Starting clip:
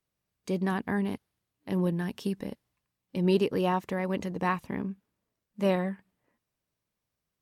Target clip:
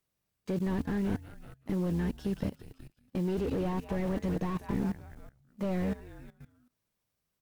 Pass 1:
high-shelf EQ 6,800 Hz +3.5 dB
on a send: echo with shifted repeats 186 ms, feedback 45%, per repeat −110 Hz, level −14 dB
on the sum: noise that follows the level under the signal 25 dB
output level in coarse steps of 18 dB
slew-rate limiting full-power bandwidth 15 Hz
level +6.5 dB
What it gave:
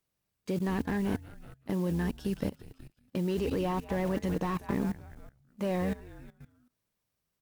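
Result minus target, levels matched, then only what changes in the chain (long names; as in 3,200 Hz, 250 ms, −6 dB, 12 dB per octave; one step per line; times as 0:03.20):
slew-rate limiting: distortion −7 dB
change: slew-rate limiting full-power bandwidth 7 Hz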